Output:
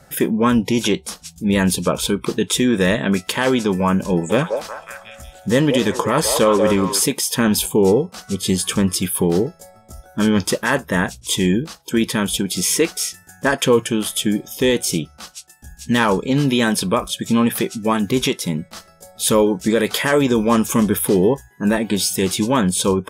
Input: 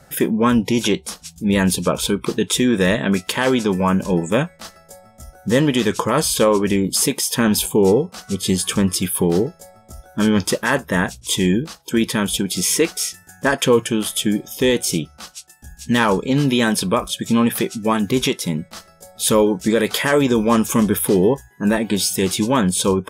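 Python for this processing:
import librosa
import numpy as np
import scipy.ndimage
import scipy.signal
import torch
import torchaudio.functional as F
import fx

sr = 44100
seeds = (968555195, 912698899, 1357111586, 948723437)

y = fx.echo_stepped(x, sr, ms=182, hz=640.0, octaves=0.7, feedback_pct=70, wet_db=-1.5, at=(4.29, 6.98), fade=0.02)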